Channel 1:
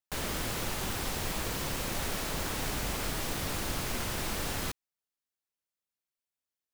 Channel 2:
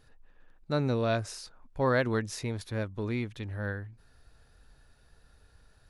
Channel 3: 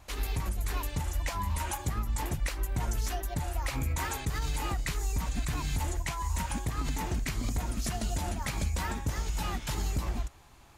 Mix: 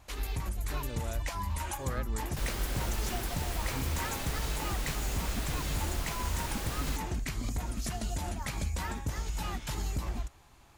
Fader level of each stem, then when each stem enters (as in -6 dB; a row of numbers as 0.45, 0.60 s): -4.5, -14.5, -2.5 dB; 2.25, 0.00, 0.00 s